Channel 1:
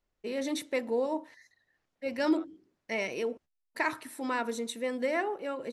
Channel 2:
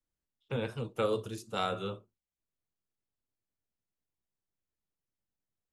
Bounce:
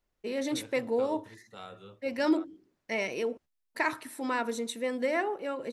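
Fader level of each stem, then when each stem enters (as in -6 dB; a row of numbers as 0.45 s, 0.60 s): +1.0 dB, -13.0 dB; 0.00 s, 0.00 s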